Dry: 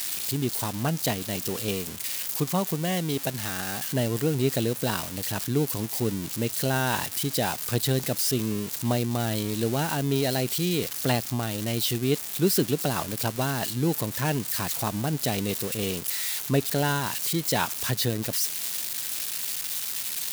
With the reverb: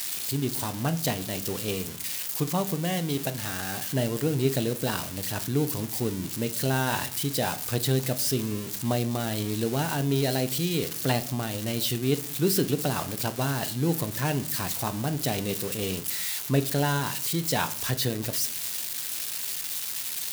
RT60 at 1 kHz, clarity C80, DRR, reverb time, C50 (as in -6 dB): 0.50 s, 21.0 dB, 9.5 dB, 0.60 s, 17.5 dB